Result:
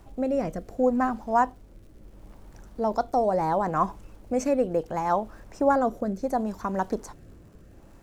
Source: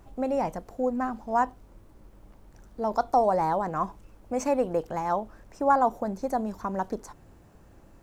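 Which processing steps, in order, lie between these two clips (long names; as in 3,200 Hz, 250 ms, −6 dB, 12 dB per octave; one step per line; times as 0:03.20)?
rotating-speaker cabinet horn 0.7 Hz
surface crackle 130 per second −57 dBFS
level +5 dB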